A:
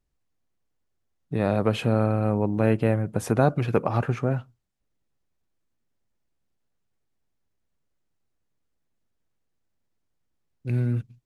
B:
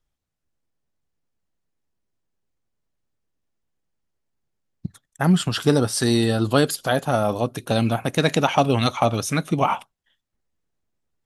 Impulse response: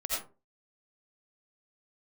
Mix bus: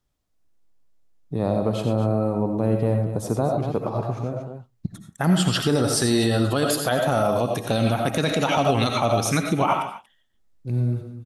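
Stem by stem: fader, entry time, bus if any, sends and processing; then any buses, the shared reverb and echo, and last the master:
-2.5 dB, 0.00 s, send -7 dB, echo send -9 dB, high-order bell 2 kHz -10.5 dB 1.3 oct; auto duck -11 dB, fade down 1.70 s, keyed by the second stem
-1.0 dB, 0.00 s, send -7.5 dB, echo send -14.5 dB, none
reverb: on, RT60 0.35 s, pre-delay 45 ms
echo: delay 235 ms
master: peak limiter -10.5 dBFS, peak gain reduction 8.5 dB

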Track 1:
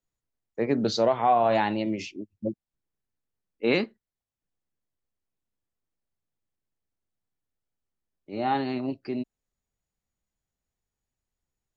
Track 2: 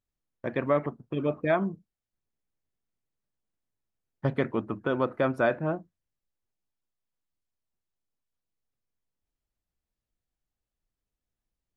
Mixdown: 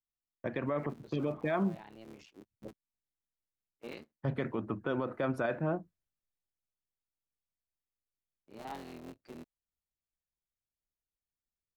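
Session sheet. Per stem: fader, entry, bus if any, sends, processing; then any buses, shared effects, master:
-16.0 dB, 0.20 s, no send, cycle switcher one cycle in 3, muted; vibrato 0.64 Hz 44 cents; auto duck -11 dB, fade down 0.55 s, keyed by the second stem
0.0 dB, 0.00 s, no send, peak limiter -18 dBFS, peak gain reduction 5.5 dB; three bands expanded up and down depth 40%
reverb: none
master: peak limiter -23 dBFS, peak gain reduction 9 dB

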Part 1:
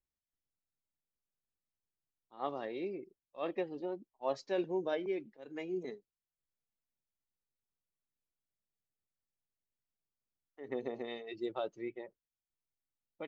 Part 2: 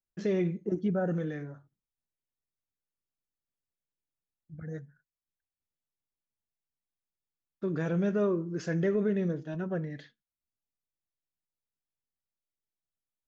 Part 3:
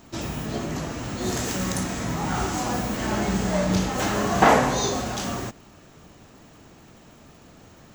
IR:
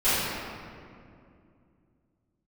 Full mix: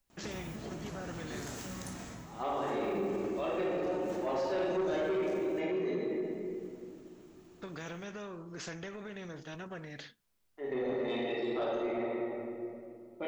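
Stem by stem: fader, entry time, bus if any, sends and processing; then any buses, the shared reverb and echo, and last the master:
+1.5 dB, 0.00 s, send -7.5 dB, none
-6.0 dB, 0.00 s, no send, compression, threshold -31 dBFS, peak gain reduction 7 dB; spectrum-flattening compressor 2:1
-13.0 dB, 0.10 s, no send, compression 2:1, threshold -27 dBFS, peak gain reduction 8.5 dB; auto duck -7 dB, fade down 0.30 s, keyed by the first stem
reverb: on, RT60 2.4 s, pre-delay 3 ms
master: saturation -21.5 dBFS, distortion -14 dB; peak limiter -27.5 dBFS, peak gain reduction 6 dB

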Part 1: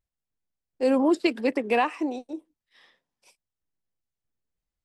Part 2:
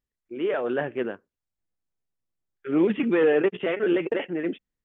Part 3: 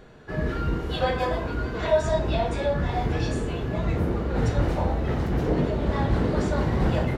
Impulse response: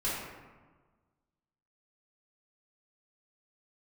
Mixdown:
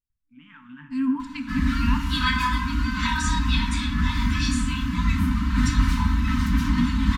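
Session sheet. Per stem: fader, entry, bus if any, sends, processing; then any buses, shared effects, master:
-6.0 dB, 0.10 s, send -13.5 dB, low-pass 1.4 kHz 6 dB/octave; bass shelf 430 Hz +9.5 dB
-17.0 dB, 0.00 s, send -13 dB, bass shelf 400 Hz +9.5 dB
+3.0 dB, 1.20 s, no send, comb 3.9 ms, depth 78%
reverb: on, RT60 1.4 s, pre-delay 3 ms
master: FFT band-reject 300–870 Hz; treble shelf 3.1 kHz +7 dB

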